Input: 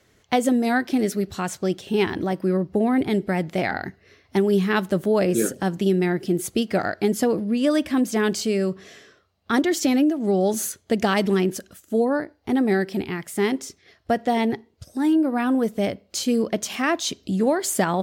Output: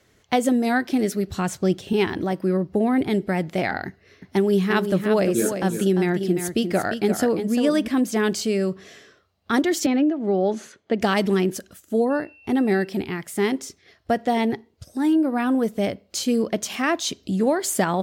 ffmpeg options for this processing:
ffmpeg -i in.wav -filter_complex "[0:a]asettb=1/sr,asplit=3[link_01][link_02][link_03];[link_01]atrim=end=1.304[link_04];[link_02]atrim=start=1.3:end=1.93,asetpts=PTS-STARTPTS,afade=type=in:duration=0.004:curve=qsin,afade=type=out:start_time=0.626:duration=0.004:curve=qsin,lowshelf=frequency=230:gain=7.5[link_05];[link_03]atrim=start=1.926[link_06];[link_04][link_05]acrossfade=duration=0.004:curve1=hsin:curve2=qsin[link_07];[link_07][link_06]acrossfade=duration=0.004:curve1=qsin:curve2=hsin,asettb=1/sr,asplit=3[link_08][link_09][link_10];[link_08]atrim=end=3.874[link_11];[link_09]atrim=start=3.87:end=7.88,asetpts=PTS-STARTPTS,afade=type=in:duration=0.004:curve=qsin,afade=type=out:start_time=4.006:duration=0.004:curve=qsin,aecho=1:1:348:0.398,atrim=end_sample=176841[link_12];[link_10]atrim=start=7.876[link_13];[link_11][link_12]acrossfade=duration=0.004:curve1=hsin:curve2=qsin[link_14];[link_14][link_13]acrossfade=duration=0.004:curve1=qsin:curve2=hsin,asettb=1/sr,asplit=3[link_15][link_16][link_17];[link_15]atrim=end=9.864[link_18];[link_16]atrim=start=9.86:end=11.01,asetpts=PTS-STARTPTS,afade=type=in:duration=0.004:curve=qsin,afade=type=out:start_time=1.146:duration=0.004:curve=qsin,highpass=190,lowpass=2900[link_19];[link_17]atrim=start=11.006[link_20];[link_18][link_19]acrossfade=duration=0.004:curve1=hsin:curve2=qsin[link_21];[link_21][link_20]acrossfade=duration=0.004:curve1=qsin:curve2=hsin,asettb=1/sr,asplit=3[link_22][link_23][link_24];[link_22]atrim=end=12.104[link_25];[link_23]atrim=start=12.1:end=12.87,asetpts=PTS-STARTPTS,afade=type=in:duration=0.004:curve=qsin,afade=type=out:start_time=0.766:duration=0.004:curve=qsin,aeval=exprs='val(0)+0.00355*sin(2*PI*2700*n/s)':channel_layout=same[link_26];[link_24]atrim=start=12.866[link_27];[link_25][link_26]acrossfade=duration=0.004:curve1=hsin:curve2=qsin[link_28];[link_28][link_27]acrossfade=duration=0.004:curve1=qsin:curve2=hsin" out.wav

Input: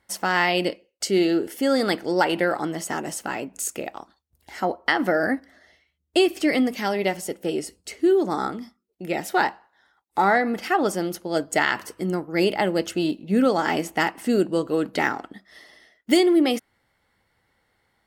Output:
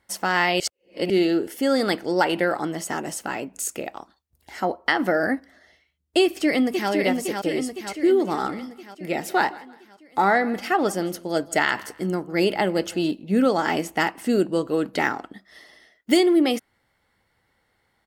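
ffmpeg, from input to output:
ffmpeg -i in.wav -filter_complex "[0:a]asplit=2[link_01][link_02];[link_02]afade=type=in:start_time=6.23:duration=0.01,afade=type=out:start_time=6.9:duration=0.01,aecho=0:1:510|1020|1530|2040|2550|3060|3570|4080|4590:0.595662|0.357397|0.214438|0.128663|0.0771978|0.0463187|0.0277912|0.0166747|0.0100048[link_03];[link_01][link_03]amix=inputs=2:normalize=0,asettb=1/sr,asplit=3[link_04][link_05][link_06];[link_04]atrim=end=8.014[link_07];[link_05]atrim=start=8.01:end=13.14,asetpts=PTS-STARTPTS,afade=type=in:duration=0.004:curve=qsin,afade=type=out:start_time=5.126:duration=0.004:curve=qsin,aecho=1:1:163|326:0.0891|0.0285,atrim=end_sample=226233[link_08];[link_06]atrim=start=13.136[link_09];[link_07][link_08]acrossfade=duration=0.004:curve1=hsin:curve2=qsin[link_10];[link_10][link_09]acrossfade=duration=0.004:curve1=qsin:curve2=hsin,asplit=3[link_11][link_12][link_13];[link_11]atrim=end=0.602[link_14];[link_12]atrim=start=0.598:end=1.102,asetpts=PTS-STARTPTS,areverse[link_15];[link_13]atrim=start=1.098[link_16];[link_14][link_15]acrossfade=duration=0.004:curve1=hsin:curve2=hsin[link_17];[link_17][link_16]acrossfade=duration=0.004:curve1=hsin:curve2=hsin" out.wav

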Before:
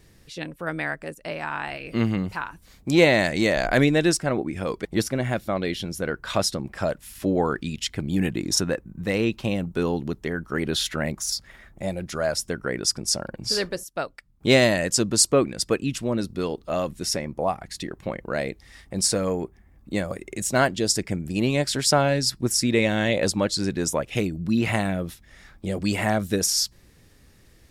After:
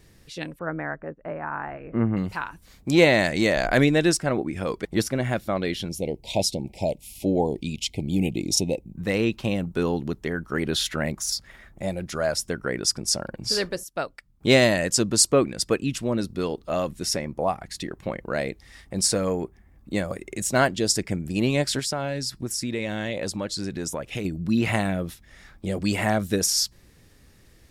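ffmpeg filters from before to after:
ffmpeg -i in.wav -filter_complex "[0:a]asettb=1/sr,asplit=3[link_01][link_02][link_03];[link_01]atrim=end=0.594[link_04];[link_02]atrim=start=0.59:end=2.17,asetpts=PTS-STARTPTS,afade=type=in:duration=0.004:curve=qsin,afade=type=out:start_time=1.576:duration=0.004:curve=qsin,lowpass=frequency=1600:width=0.5412,lowpass=frequency=1600:width=1.3066[link_05];[link_03]atrim=start=2.166[link_06];[link_04][link_05]acrossfade=duration=0.004:curve1=hsin:curve2=qsin[link_07];[link_07][link_06]acrossfade=duration=0.004:curve1=qsin:curve2=hsin,asplit=3[link_08][link_09][link_10];[link_08]afade=type=out:start_time=5.88:duration=0.02[link_11];[link_09]asuperstop=centerf=1400:order=12:qfactor=1.1,afade=type=in:start_time=5.88:duration=0.02,afade=type=out:start_time=8.95:duration=0.02[link_12];[link_10]afade=type=in:start_time=8.95:duration=0.02[link_13];[link_11][link_12][link_13]amix=inputs=3:normalize=0,asettb=1/sr,asplit=3[link_14][link_15][link_16];[link_14]atrim=end=21.794[link_17];[link_15]atrim=start=21.79:end=24.25,asetpts=PTS-STARTPTS,afade=type=in:duration=0.004:curve=qsin,afade=type=out:start_time=2.456:duration=0.004:curve=qsin,acompressor=threshold=-28dB:ratio=2.5:attack=3.2:release=140:knee=1:detection=peak[link_18];[link_16]atrim=start=24.246[link_19];[link_17][link_18]acrossfade=duration=0.004:curve1=hsin:curve2=qsin[link_20];[link_20][link_19]acrossfade=duration=0.004:curve1=qsin:curve2=hsin" out.wav

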